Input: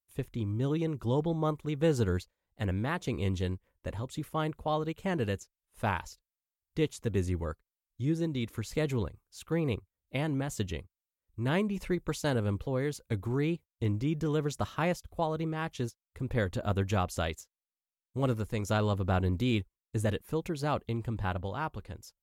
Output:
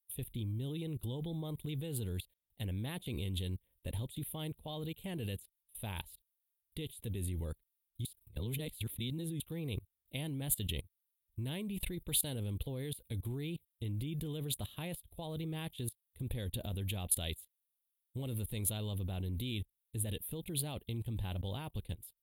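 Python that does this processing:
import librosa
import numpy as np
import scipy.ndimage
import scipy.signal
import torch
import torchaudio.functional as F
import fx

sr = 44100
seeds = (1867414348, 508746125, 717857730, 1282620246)

y = fx.edit(x, sr, fx.reverse_span(start_s=8.05, length_s=1.35), tone=tone)
y = fx.level_steps(y, sr, step_db=21)
y = fx.curve_eq(y, sr, hz=(110.0, 860.0, 1300.0, 3600.0, 5800.0, 10000.0), db=(0, -9, -17, 8, -20, 15))
y = y * 10.0 ** (6.0 / 20.0)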